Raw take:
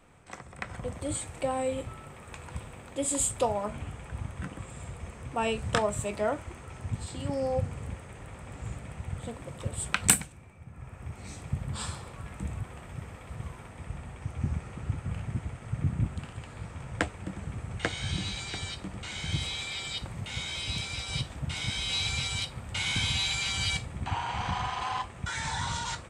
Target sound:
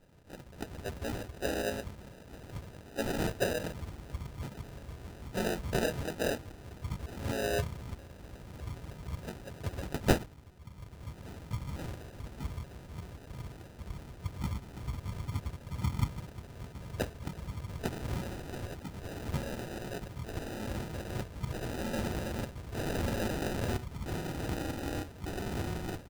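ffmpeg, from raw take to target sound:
ffmpeg -i in.wav -filter_complex "[0:a]asplit=3[link_01][link_02][link_03];[link_02]asetrate=35002,aresample=44100,atempo=1.25992,volume=0dB[link_04];[link_03]asetrate=58866,aresample=44100,atempo=0.749154,volume=-7dB[link_05];[link_01][link_04][link_05]amix=inputs=3:normalize=0,acrusher=samples=40:mix=1:aa=0.000001,volume=-6.5dB" out.wav

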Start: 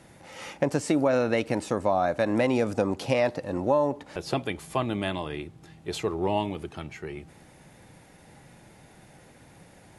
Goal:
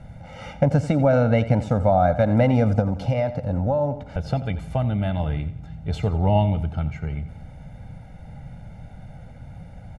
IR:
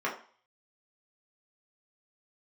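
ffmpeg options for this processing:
-filter_complex "[0:a]aemphasis=mode=reproduction:type=riaa,aecho=1:1:1.4:0.84,asettb=1/sr,asplit=3[link_01][link_02][link_03];[link_01]atrim=end=2.794[link_04];[link_02]atrim=start=2.79:end=5.2,asetpts=PTS-STARTPTS,afade=type=in:duration=0.004:curve=qsin,afade=type=out:start_time=2.406:duration=0.004:curve=qsin,acompressor=threshold=-21dB:ratio=2.5[link_05];[link_03]atrim=start=5.196[link_06];[link_04][link_05]acrossfade=duration=0.004:curve1=hsin:curve2=qsin[link_07];[link_07][link_06]acrossfade=duration=0.004:curve1=qsin:curve2=hsin,aecho=1:1:88|176|264|352:0.188|0.0753|0.0301|0.0121"

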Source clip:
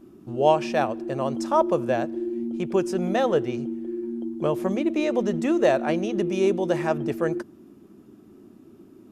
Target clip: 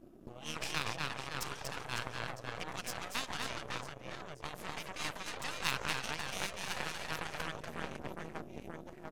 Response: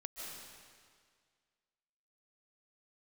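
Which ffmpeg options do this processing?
-af "aecho=1:1:240|552|957.6|1485|2170:0.631|0.398|0.251|0.158|0.1,afftfilt=real='re*lt(hypot(re,im),0.112)':imag='im*lt(hypot(re,im),0.112)':win_size=1024:overlap=0.75,aeval=exprs='0.112*(cos(1*acos(clip(val(0)/0.112,-1,1)))-cos(1*PI/2))+0.0316*(cos(3*acos(clip(val(0)/0.112,-1,1)))-cos(3*PI/2))+0.00891*(cos(6*acos(clip(val(0)/0.112,-1,1)))-cos(6*PI/2))':channel_layout=same,volume=6.5dB"

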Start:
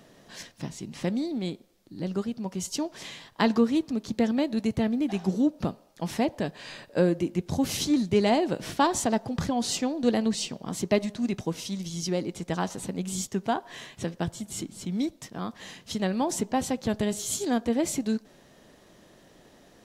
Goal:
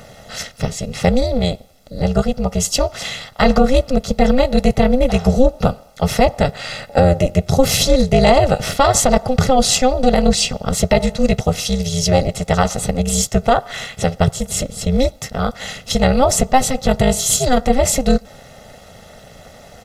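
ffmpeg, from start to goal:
ffmpeg -i in.wav -af "tremolo=f=260:d=1,aecho=1:1:1.5:0.76,alimiter=level_in=18dB:limit=-1dB:release=50:level=0:latency=1,volume=-1dB" out.wav

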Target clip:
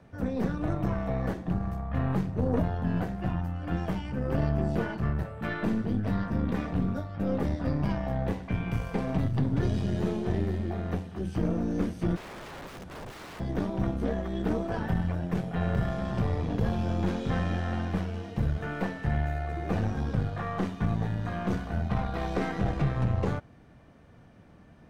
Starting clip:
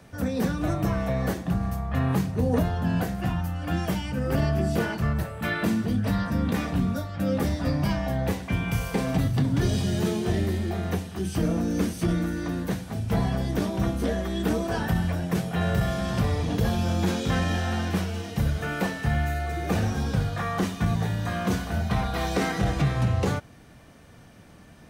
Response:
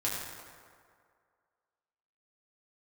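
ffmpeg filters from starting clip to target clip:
-filter_complex "[0:a]aeval=exprs='0.2*(cos(1*acos(clip(val(0)/0.2,-1,1)))-cos(1*PI/2))+0.0251*(cos(4*acos(clip(val(0)/0.2,-1,1)))-cos(4*PI/2))':channel_layout=same,asplit=3[link_01][link_02][link_03];[link_01]afade=type=out:start_time=12.15:duration=0.02[link_04];[link_02]aeval=exprs='(mod(35.5*val(0)+1,2)-1)/35.5':channel_layout=same,afade=type=in:start_time=12.15:duration=0.02,afade=type=out:start_time=13.39:duration=0.02[link_05];[link_03]afade=type=in:start_time=13.39:duration=0.02[link_06];[link_04][link_05][link_06]amix=inputs=3:normalize=0,lowpass=frequency=1500:poles=1,volume=-3.5dB"

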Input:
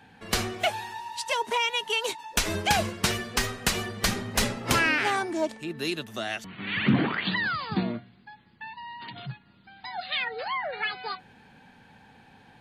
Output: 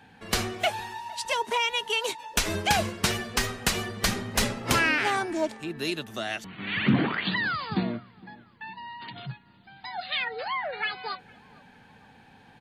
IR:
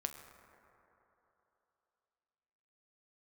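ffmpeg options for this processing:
-filter_complex "[0:a]asplit=2[link_01][link_02];[link_02]adelay=459,lowpass=frequency=1700:poles=1,volume=-23dB,asplit=2[link_03][link_04];[link_04]adelay=459,lowpass=frequency=1700:poles=1,volume=0.51,asplit=2[link_05][link_06];[link_06]adelay=459,lowpass=frequency=1700:poles=1,volume=0.51[link_07];[link_01][link_03][link_05][link_07]amix=inputs=4:normalize=0"

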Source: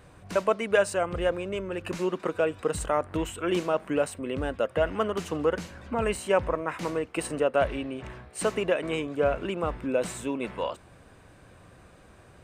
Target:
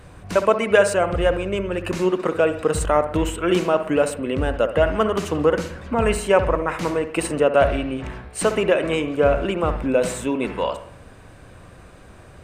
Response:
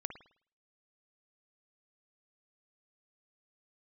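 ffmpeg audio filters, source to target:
-filter_complex "[0:a]asplit=2[link_01][link_02];[1:a]atrim=start_sample=2205,asetrate=38367,aresample=44100,lowshelf=frequency=77:gain=9.5[link_03];[link_02][link_03]afir=irnorm=-1:irlink=0,volume=5dB[link_04];[link_01][link_04]amix=inputs=2:normalize=0,volume=-1dB"

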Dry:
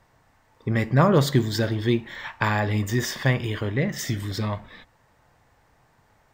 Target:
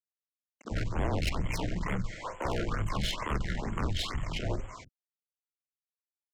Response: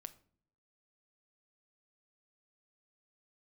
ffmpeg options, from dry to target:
-filter_complex "[0:a]highpass=frequency=110:width=0.5412,highpass=frequency=110:width=1.3066,bandreject=frequency=433.3:width_type=h:width=4,bandreject=frequency=866.6:width_type=h:width=4,bandreject=frequency=1299.9:width_type=h:width=4,bandreject=frequency=1733.2:width_type=h:width=4,bandreject=frequency=2166.5:width_type=h:width=4,bandreject=frequency=2599.8:width_type=h:width=4,bandreject=frequency=3033.1:width_type=h:width=4,bandreject=frequency=3466.4:width_type=h:width=4,bandreject=frequency=3899.7:width_type=h:width=4,bandreject=frequency=4333:width_type=h:width=4,bandreject=frequency=4766.3:width_type=h:width=4,bandreject=frequency=5199.6:width_type=h:width=4,bandreject=frequency=5632.9:width_type=h:width=4,bandreject=frequency=6066.2:width_type=h:width=4,bandreject=frequency=6499.5:width_type=h:width=4,bandreject=frequency=6932.8:width_type=h:width=4,bandreject=frequency=7366.1:width_type=h:width=4,bandreject=frequency=7799.4:width_type=h:width=4,bandreject=frequency=8232.7:width_type=h:width=4,bandreject=frequency=8666:width_type=h:width=4,bandreject=frequency=9099.3:width_type=h:width=4,bandreject=frequency=9532.6:width_type=h:width=4,alimiter=limit=-14dB:level=0:latency=1:release=103,dynaudnorm=framelen=150:gausssize=5:maxgain=11.5dB,asetrate=26222,aresample=44100,atempo=1.68179,aeval=exprs='0.708*(cos(1*acos(clip(val(0)/0.708,-1,1)))-cos(1*PI/2))+0.0794*(cos(3*acos(clip(val(0)/0.708,-1,1)))-cos(3*PI/2))+0.158*(cos(4*acos(clip(val(0)/0.708,-1,1)))-cos(4*PI/2))+0.00708*(cos(5*acos(clip(val(0)/0.708,-1,1)))-cos(5*PI/2))+0.00562*(cos(6*acos(clip(val(0)/0.708,-1,1)))-cos(6*PI/2))':channel_layout=same,afreqshift=-22,aresample=16000,acrusher=bits=6:mix=0:aa=0.000001,aresample=44100,aeval=exprs='(tanh(11.2*val(0)+0.5)-tanh(0.5))/11.2':channel_layout=same,acrossover=split=250[link_01][link_02];[link_01]adelay=40[link_03];[link_03][link_02]amix=inputs=2:normalize=0,afftfilt=real='re*(1-between(b*sr/1024,940*pow(4900/940,0.5+0.5*sin(2*PI*2.2*pts/sr))/1.41,940*pow(4900/940,0.5+0.5*sin(2*PI*2.2*pts/sr))*1.41))':imag='im*(1-between(b*sr/1024,940*pow(4900/940,0.5+0.5*sin(2*PI*2.2*pts/sr))/1.41,940*pow(4900/940,0.5+0.5*sin(2*PI*2.2*pts/sr))*1.41))':win_size=1024:overlap=0.75,volume=-5.5dB"

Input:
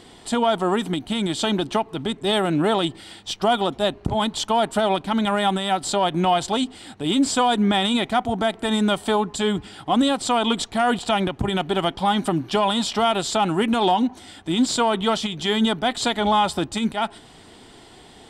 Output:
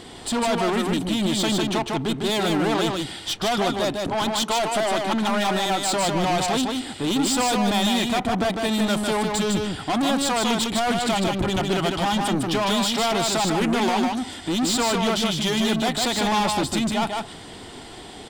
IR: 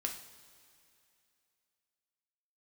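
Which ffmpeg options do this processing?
-filter_complex "[0:a]asettb=1/sr,asplit=3[link_01][link_02][link_03];[link_01]atrim=end=3.934[link_04];[link_02]atrim=start=3.93:end=5.93,asetpts=PTS-STARTPTS,afade=type=in:duration=0.004:curve=qsin,afade=type=out:start_time=1.996:duration=0.004:curve=qsin,highpass=200[link_05];[link_03]atrim=start=5.926[link_06];[link_04][link_05]acrossfade=duration=0.004:curve1=hsin:curve2=qsin[link_07];[link_07][link_06]acrossfade=duration=0.004:curve1=qsin:curve2=hsin,aeval=exprs='(tanh(20*val(0)+0.05)-tanh(0.05))/20':channel_layout=same,aecho=1:1:153:0.668,volume=5.5dB"

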